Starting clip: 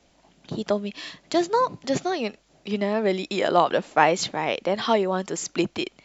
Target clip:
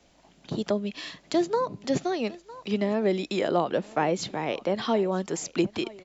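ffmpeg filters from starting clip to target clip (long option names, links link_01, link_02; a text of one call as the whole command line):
ffmpeg -i in.wav -filter_complex "[0:a]aecho=1:1:954:0.0708,acrossover=split=500[link_01][link_02];[link_02]acompressor=threshold=-35dB:ratio=2[link_03];[link_01][link_03]amix=inputs=2:normalize=0" out.wav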